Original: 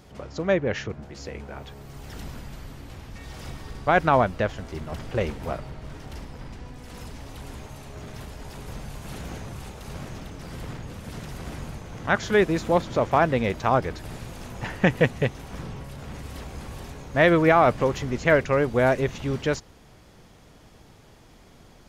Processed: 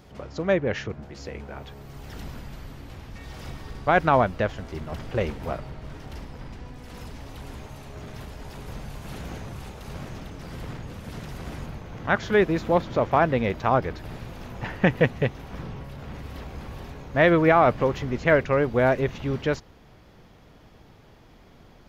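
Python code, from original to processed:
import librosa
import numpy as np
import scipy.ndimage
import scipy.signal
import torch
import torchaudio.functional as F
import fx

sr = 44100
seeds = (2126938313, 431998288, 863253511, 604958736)

y = fx.peak_eq(x, sr, hz=8600.0, db=fx.steps((0.0, -5.0), (11.66, -12.5)), octaves=1.1)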